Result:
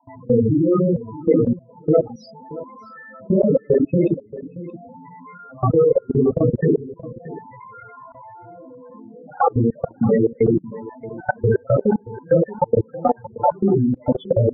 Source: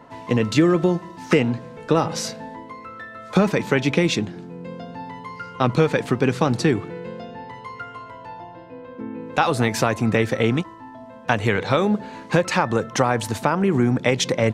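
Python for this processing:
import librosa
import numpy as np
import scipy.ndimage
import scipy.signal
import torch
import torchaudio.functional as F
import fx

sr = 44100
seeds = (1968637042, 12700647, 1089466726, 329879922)

p1 = fx.phase_scramble(x, sr, seeds[0], window_ms=200)
p2 = fx.high_shelf(p1, sr, hz=8100.0, db=-9.5)
p3 = fx.spec_topn(p2, sr, count=8)
p4 = fx.level_steps(p3, sr, step_db=23)
p5 = fx.dereverb_blind(p4, sr, rt60_s=0.73)
p6 = fx.dynamic_eq(p5, sr, hz=510.0, q=1.2, threshold_db=-37.0, ratio=4.0, max_db=5)
p7 = p6 + fx.echo_single(p6, sr, ms=627, db=-17.0, dry=0)
y = F.gain(torch.from_numpy(p7), 6.5).numpy()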